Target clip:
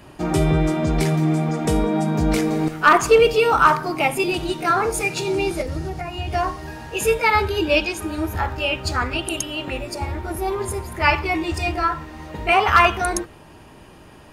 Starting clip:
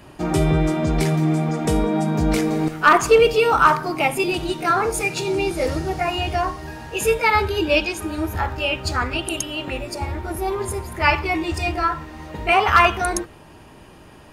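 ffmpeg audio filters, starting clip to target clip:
ffmpeg -i in.wav -filter_complex "[0:a]asettb=1/sr,asplit=3[link_01][link_02][link_03];[link_01]atrim=end=5.614[link_04];[link_02]atrim=start=5.61:end=6.33,asetpts=PTS-STARTPTS,afade=type=in:duration=0.004:curve=qsin,afade=type=out:start_time=0.716:duration=0.004:curve=qsin,acrossover=split=220[link_05][link_06];[link_06]acompressor=threshold=-29dB:ratio=6[link_07];[link_05][link_07]amix=inputs=2:normalize=0[link_08];[link_03]atrim=start=6.326[link_09];[link_04][link_08]acrossfade=duration=0.004:curve1=hsin:curve2=qsin[link_10];[link_10][link_09]acrossfade=duration=0.004:curve1=qsin:curve2=hsin" out.wav

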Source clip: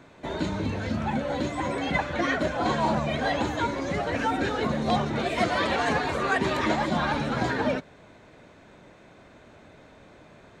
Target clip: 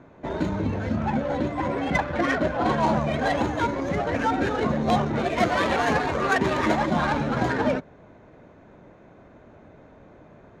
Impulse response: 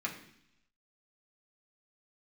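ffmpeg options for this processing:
-af "asetnsamples=nb_out_samples=441:pad=0,asendcmd='1.38 equalizer g 7;2.8 equalizer g 14.5',equalizer=frequency=6600:width=1.8:gain=14,adynamicsmooth=sensitivity=1.5:basefreq=1500,volume=3dB"

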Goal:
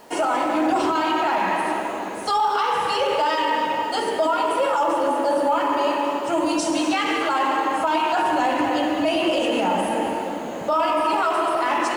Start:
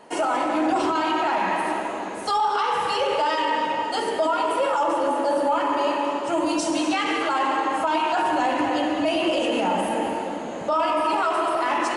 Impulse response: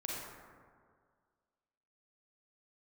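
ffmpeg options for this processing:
-af "acrusher=bits=8:mix=0:aa=0.000001,volume=1.5dB"

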